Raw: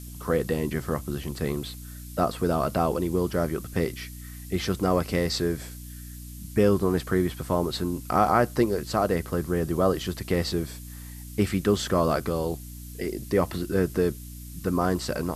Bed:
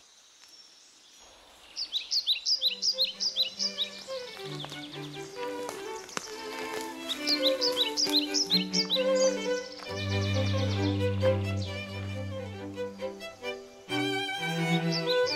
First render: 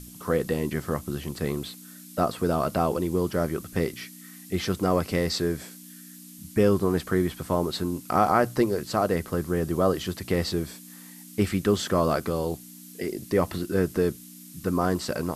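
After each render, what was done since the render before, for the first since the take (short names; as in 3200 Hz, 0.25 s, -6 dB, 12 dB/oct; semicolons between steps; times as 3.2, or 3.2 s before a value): notches 60/120 Hz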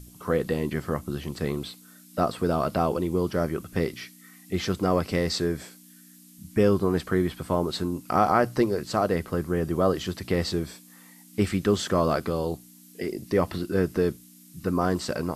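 noise print and reduce 6 dB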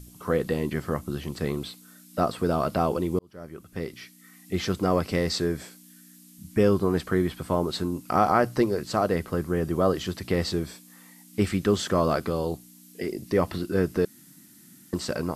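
3.19–4.54 fade in; 14.05–14.93 room tone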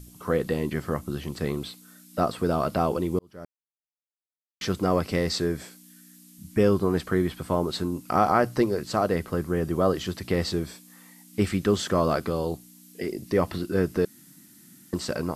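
3.45–4.61 mute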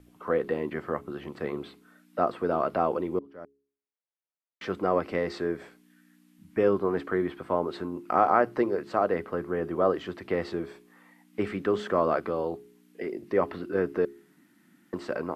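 three-band isolator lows -14 dB, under 260 Hz, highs -21 dB, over 2600 Hz; de-hum 69.61 Hz, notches 6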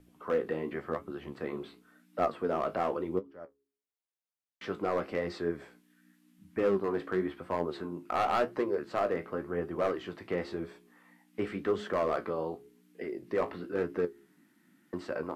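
hard clip -18 dBFS, distortion -14 dB; flange 0.93 Hz, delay 9.9 ms, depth 9.7 ms, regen +51%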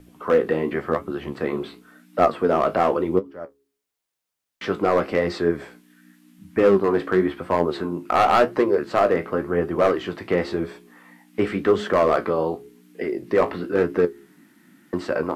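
gain +11.5 dB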